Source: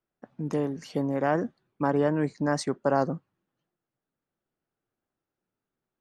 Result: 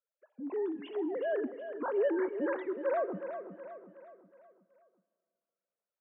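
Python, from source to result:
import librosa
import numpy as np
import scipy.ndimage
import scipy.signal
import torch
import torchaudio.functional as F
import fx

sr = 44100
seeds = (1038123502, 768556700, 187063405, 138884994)

p1 = fx.sine_speech(x, sr)
p2 = fx.transient(p1, sr, attack_db=-5, sustain_db=2)
p3 = p2 + fx.echo_feedback(p2, sr, ms=369, feedback_pct=46, wet_db=-9.5, dry=0)
p4 = fx.rev_plate(p3, sr, seeds[0], rt60_s=2.5, hf_ratio=0.8, predelay_ms=0, drr_db=17.0)
y = F.gain(torch.from_numpy(p4), -5.5).numpy()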